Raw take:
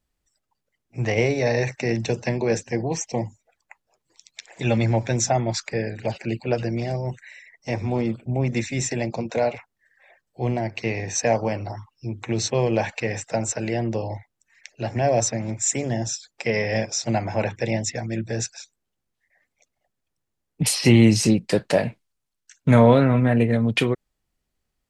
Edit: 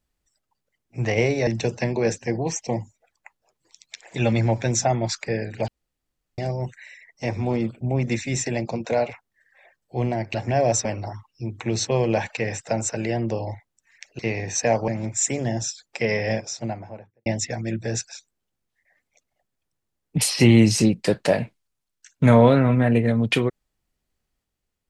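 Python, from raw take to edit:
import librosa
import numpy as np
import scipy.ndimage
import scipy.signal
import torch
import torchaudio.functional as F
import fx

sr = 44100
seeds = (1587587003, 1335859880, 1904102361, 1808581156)

y = fx.studio_fade_out(x, sr, start_s=16.58, length_s=1.13)
y = fx.edit(y, sr, fx.cut(start_s=1.47, length_s=0.45),
    fx.room_tone_fill(start_s=6.13, length_s=0.7),
    fx.swap(start_s=10.79, length_s=0.69, other_s=14.82, other_length_s=0.51), tone=tone)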